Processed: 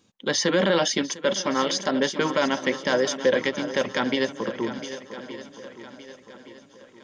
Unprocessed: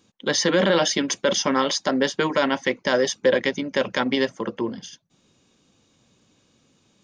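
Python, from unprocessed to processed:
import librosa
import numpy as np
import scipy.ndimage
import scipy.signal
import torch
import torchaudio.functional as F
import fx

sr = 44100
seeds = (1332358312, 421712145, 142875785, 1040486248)

y = fx.echo_swing(x, sr, ms=1168, ratio=1.5, feedback_pct=39, wet_db=-12.5)
y = fx.upward_expand(y, sr, threshold_db=-29.0, expansion=1.5, at=(1.03, 1.59))
y = y * librosa.db_to_amplitude(-2.0)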